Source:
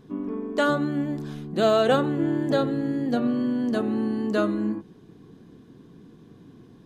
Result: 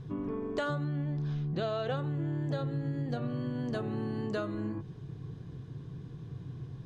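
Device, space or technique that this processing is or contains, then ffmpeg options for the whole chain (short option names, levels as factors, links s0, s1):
jukebox: -filter_complex "[0:a]asettb=1/sr,asplit=3[s0][s1][s2];[s0]atrim=end=0.844[s3];[s1]atrim=start=0.84:end=1.97,asetpts=PTS-STARTPTS,afade=t=in:d=0.004:c=qsin,afade=t=out:st=1.126:d=0.004:c=qsin,lowpass=f=6000:w=0.5412,lowpass=f=6000:w=1.3066[s4];[s2]atrim=start=1.966[s5];[s3][s4]acrossfade=d=0.004:c1=hsin:c2=qsin[s6];[s6][s5]acrossfade=d=0.004:c1=qsin:c2=hsin,lowpass=7500,lowshelf=f=170:t=q:w=3:g=8.5,acompressor=threshold=0.0282:ratio=6"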